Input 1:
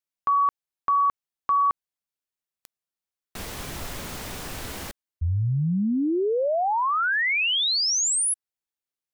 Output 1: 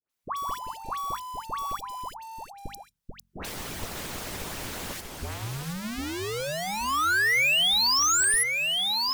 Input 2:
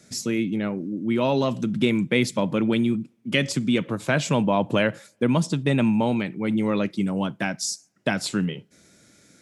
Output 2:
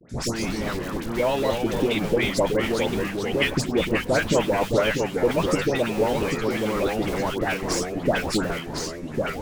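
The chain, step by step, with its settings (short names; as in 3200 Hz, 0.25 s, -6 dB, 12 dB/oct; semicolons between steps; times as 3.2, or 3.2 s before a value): in parallel at -3.5 dB: Schmitt trigger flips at -23 dBFS; on the sum: harmonic-percussive split harmonic -15 dB; dispersion highs, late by 97 ms, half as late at 1300 Hz; dynamic EQ 520 Hz, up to +5 dB, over -37 dBFS, Q 1.3; notches 50/100/150/200/250 Hz; echoes that change speed 0.113 s, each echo -2 st, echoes 3, each echo -6 dB; three-band squash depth 40%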